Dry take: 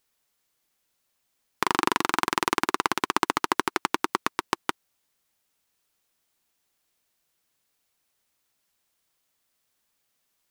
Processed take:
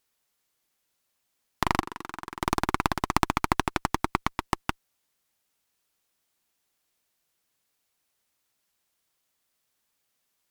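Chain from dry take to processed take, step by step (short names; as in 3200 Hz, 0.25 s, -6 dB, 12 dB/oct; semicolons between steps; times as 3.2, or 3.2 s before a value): 1.8–2.42 level quantiser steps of 18 dB; added harmonics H 4 -9 dB, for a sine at -1 dBFS; gain -1.5 dB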